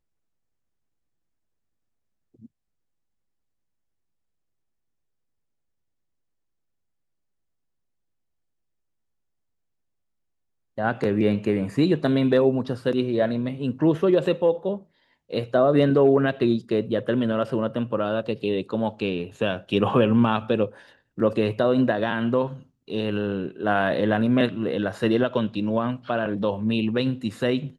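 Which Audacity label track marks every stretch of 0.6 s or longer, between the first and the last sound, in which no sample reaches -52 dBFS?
2.460000	10.780000	silence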